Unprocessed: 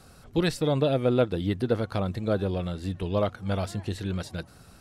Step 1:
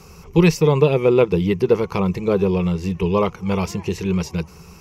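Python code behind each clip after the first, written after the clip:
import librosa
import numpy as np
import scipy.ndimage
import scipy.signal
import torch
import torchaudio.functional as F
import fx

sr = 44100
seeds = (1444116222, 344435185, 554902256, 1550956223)

y = fx.ripple_eq(x, sr, per_octave=0.78, db=14)
y = y * 10.0 ** (7.0 / 20.0)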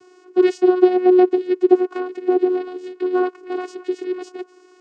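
y = fx.vocoder(x, sr, bands=8, carrier='saw', carrier_hz=365.0)
y = y * 10.0 ** (1.0 / 20.0)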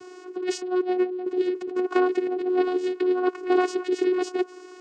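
y = fx.over_compress(x, sr, threshold_db=-24.0, ratio=-1.0)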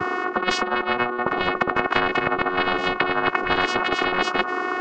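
y = fx.lowpass_res(x, sr, hz=1200.0, q=7.7)
y = fx.spectral_comp(y, sr, ratio=10.0)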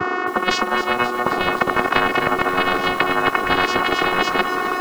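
y = fx.echo_crushed(x, sr, ms=264, feedback_pct=80, bits=6, wet_db=-10.5)
y = y * 10.0 ** (3.0 / 20.0)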